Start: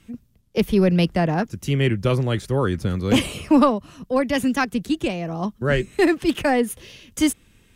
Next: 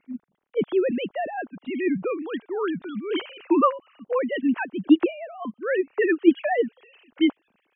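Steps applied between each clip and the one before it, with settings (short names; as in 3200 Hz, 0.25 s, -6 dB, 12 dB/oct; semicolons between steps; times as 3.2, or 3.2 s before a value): sine-wave speech; gain -3.5 dB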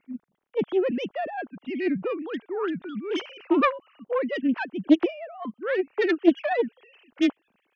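self-modulated delay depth 0.23 ms; gain -1.5 dB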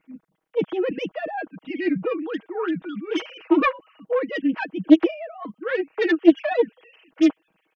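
comb 6.3 ms, depth 86%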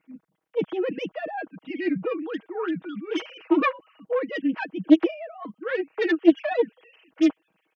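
HPF 41 Hz; gain -2.5 dB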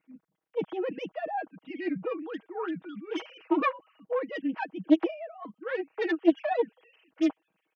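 dynamic EQ 820 Hz, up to +8 dB, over -42 dBFS, Q 1.7; gain -6.5 dB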